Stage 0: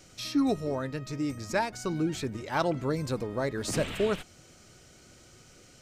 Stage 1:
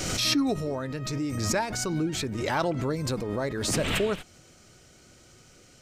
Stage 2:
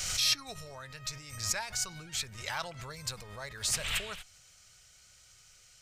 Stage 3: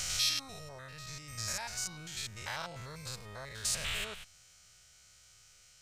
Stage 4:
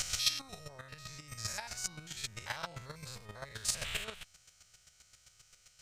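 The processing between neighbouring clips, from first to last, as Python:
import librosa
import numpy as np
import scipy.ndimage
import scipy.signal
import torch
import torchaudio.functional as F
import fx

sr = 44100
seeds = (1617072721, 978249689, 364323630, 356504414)

y1 = fx.pre_swell(x, sr, db_per_s=29.0)
y2 = fx.tone_stack(y1, sr, knobs='10-0-10')
y3 = fx.spec_steps(y2, sr, hold_ms=100)
y4 = fx.chopper(y3, sr, hz=7.6, depth_pct=65, duty_pct=15)
y4 = F.gain(torch.from_numpy(y4), 4.0).numpy()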